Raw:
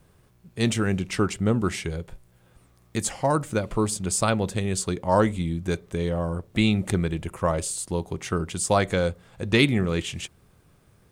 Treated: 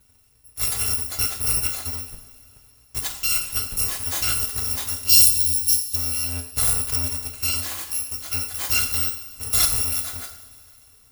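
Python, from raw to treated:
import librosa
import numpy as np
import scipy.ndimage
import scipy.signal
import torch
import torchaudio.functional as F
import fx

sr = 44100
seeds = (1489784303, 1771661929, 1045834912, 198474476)

y = fx.bit_reversed(x, sr, seeds[0], block=256)
y = fx.curve_eq(y, sr, hz=(220.0, 930.0, 3800.0), db=(0, -27, 7), at=(5.09, 5.96))
y = fx.rev_double_slope(y, sr, seeds[1], early_s=0.59, late_s=3.2, knee_db=-18, drr_db=3.5)
y = y * librosa.db_to_amplitude(-1.5)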